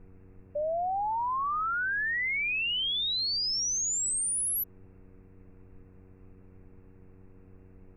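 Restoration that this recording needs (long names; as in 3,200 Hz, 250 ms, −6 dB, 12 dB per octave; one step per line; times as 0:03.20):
hum removal 93.7 Hz, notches 5
noise reduction from a noise print 26 dB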